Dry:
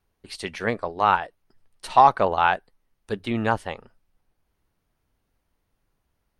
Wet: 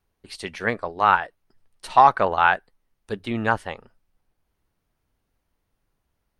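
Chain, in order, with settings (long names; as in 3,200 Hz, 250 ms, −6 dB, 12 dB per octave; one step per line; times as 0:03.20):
dynamic equaliser 1,600 Hz, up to +6 dB, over −34 dBFS, Q 1.3
level −1 dB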